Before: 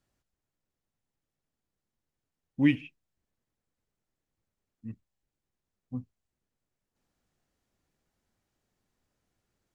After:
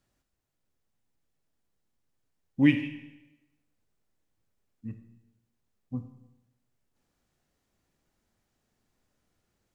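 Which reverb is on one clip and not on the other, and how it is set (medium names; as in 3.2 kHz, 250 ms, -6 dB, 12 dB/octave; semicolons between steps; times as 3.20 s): Schroeder reverb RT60 0.97 s, combs from 26 ms, DRR 8 dB; trim +2.5 dB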